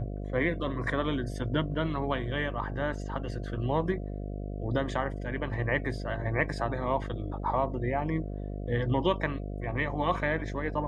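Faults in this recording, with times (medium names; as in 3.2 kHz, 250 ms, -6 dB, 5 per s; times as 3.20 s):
buzz 50 Hz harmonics 14 -36 dBFS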